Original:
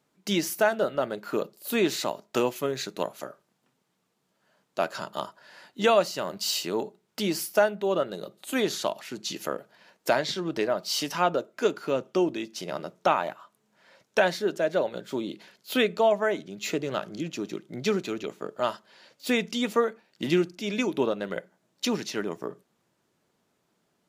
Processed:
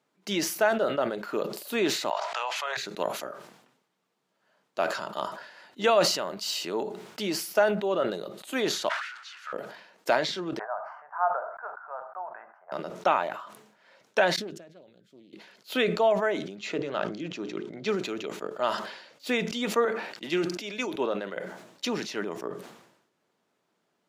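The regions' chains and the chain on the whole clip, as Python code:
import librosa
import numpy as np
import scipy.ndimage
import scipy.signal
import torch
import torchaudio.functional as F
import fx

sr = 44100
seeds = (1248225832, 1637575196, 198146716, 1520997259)

y = fx.chain(x, sr, fx.steep_highpass(hz=690.0, slope=36),
    fx.air_absorb(metres=96.0),
    fx.env_flatten(amount_pct=100), at=(2.1, 2.77))
y = fx.chain(y, sr, fx.zero_step(step_db=-29.5),
    fx.ladder_highpass(hz=1300.0, resonance_pct=70),
    fx.air_absorb(metres=81.0), at=(8.89, 9.53))
y = fx.chain(y, sr, fx.ellip_bandpass(low_hz=720.0, high_hz=1600.0, order=3, stop_db=50),
    fx.tilt_eq(slope=-4.5), at=(10.59, 12.72))
y = fx.chain(y, sr, fx.tone_stack(knobs='10-0-1'),
    fx.doppler_dist(depth_ms=0.22), at=(14.36, 15.33))
y = fx.chain(y, sr, fx.air_absorb(metres=68.0),
    fx.hum_notches(base_hz=60, count=8),
    fx.sustainer(db_per_s=70.0), at=(16.56, 17.89))
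y = fx.chain(y, sr, fx.low_shelf(hz=260.0, db=-7.5),
    fx.band_widen(depth_pct=40), at=(19.85, 21.37))
y = fx.highpass(y, sr, hz=320.0, slope=6)
y = fx.high_shelf(y, sr, hz=6100.0, db=-9.0)
y = fx.sustainer(y, sr, db_per_s=68.0)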